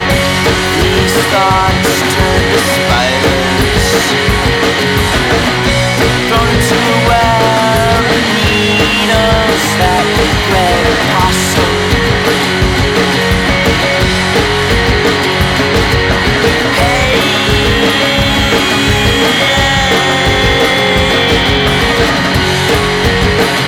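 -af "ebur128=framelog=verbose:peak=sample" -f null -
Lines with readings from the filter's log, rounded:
Integrated loudness:
  I:          -9.5 LUFS
  Threshold: -19.5 LUFS
Loudness range:
  LRA:         1.1 LU
  Threshold: -29.5 LUFS
  LRA low:   -10.0 LUFS
  LRA high:   -8.8 LUFS
Sample peak:
  Peak:       -1.5 dBFS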